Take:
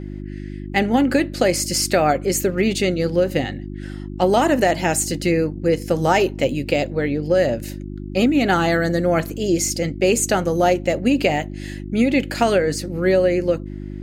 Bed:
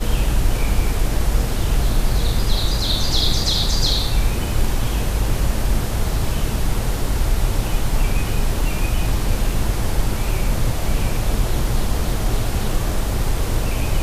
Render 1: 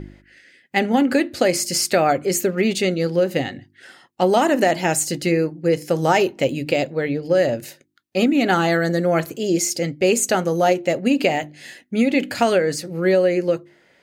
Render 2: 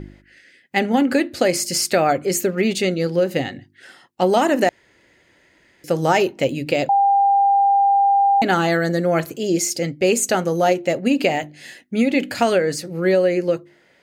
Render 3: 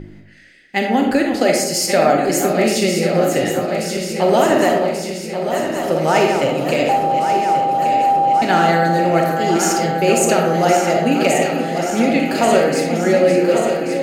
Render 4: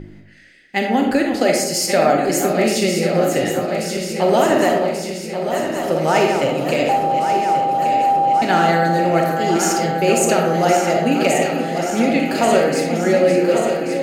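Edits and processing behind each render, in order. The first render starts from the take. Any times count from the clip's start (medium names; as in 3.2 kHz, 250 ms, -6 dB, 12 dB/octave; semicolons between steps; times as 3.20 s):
de-hum 50 Hz, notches 7
4.69–5.84 s: room tone; 6.89–8.42 s: bleep 797 Hz -12 dBFS
backward echo that repeats 567 ms, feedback 81%, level -7.5 dB; algorithmic reverb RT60 0.94 s, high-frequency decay 0.45×, pre-delay 5 ms, DRR 1.5 dB
trim -1 dB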